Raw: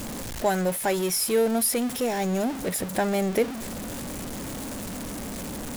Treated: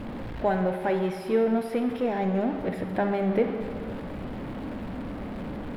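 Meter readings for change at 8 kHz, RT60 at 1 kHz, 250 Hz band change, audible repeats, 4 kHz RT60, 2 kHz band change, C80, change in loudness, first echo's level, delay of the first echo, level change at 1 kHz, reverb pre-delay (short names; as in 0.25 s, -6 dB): under -25 dB, 1.9 s, +0.5 dB, none, 1.3 s, -3.0 dB, 8.5 dB, -1.5 dB, none, none, -0.5 dB, 30 ms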